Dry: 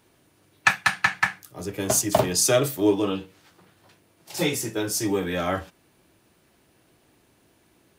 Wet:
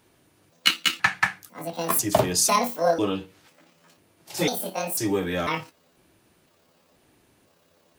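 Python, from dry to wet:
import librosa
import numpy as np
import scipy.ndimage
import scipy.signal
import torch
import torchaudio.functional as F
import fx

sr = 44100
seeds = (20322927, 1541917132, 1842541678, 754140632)

y = fx.pitch_trill(x, sr, semitones=9.0, every_ms=497)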